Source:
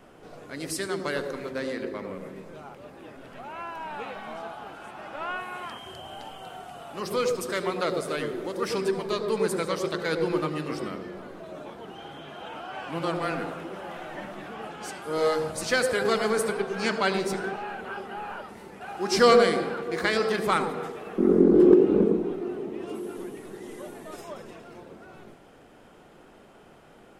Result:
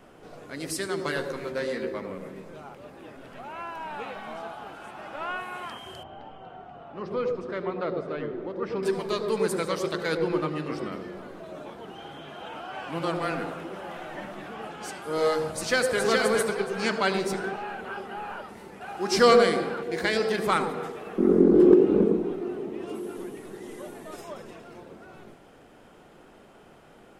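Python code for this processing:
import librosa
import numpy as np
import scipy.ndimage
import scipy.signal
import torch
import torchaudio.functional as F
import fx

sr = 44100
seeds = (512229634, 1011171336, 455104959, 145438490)

y = fx.doubler(x, sr, ms=13.0, db=-5, at=(0.96, 1.99))
y = fx.spacing_loss(y, sr, db_at_10k=38, at=(6.03, 8.83))
y = fx.high_shelf(y, sr, hz=6000.0, db=-10.0, at=(10.17, 10.92))
y = fx.echo_throw(y, sr, start_s=15.51, length_s=0.49, ms=420, feedback_pct=20, wet_db=-3.0)
y = fx.peak_eq(y, sr, hz=1200.0, db=-11.5, octaves=0.29, at=(19.83, 20.38))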